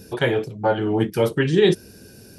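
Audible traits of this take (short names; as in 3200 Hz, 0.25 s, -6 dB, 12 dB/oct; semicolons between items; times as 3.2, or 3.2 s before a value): noise floor -46 dBFS; spectral tilt -5.0 dB/oct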